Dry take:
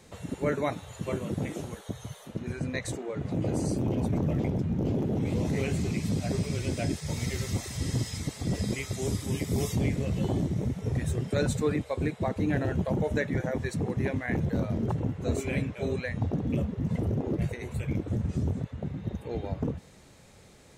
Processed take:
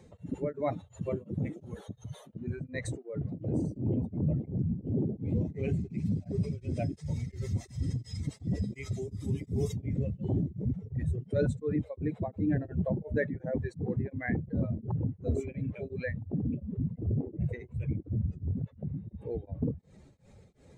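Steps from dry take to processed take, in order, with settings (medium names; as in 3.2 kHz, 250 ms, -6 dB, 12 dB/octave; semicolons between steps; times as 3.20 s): spectral contrast enhancement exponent 1.7; tremolo of two beating tones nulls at 2.8 Hz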